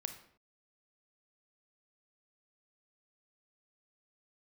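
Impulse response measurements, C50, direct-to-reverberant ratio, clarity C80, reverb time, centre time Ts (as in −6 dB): 9.5 dB, 7.0 dB, 13.0 dB, non-exponential decay, 12 ms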